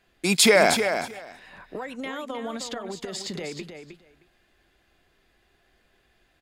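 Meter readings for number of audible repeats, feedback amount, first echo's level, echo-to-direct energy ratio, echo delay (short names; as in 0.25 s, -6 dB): 2, 15%, -8.0 dB, -8.0 dB, 0.311 s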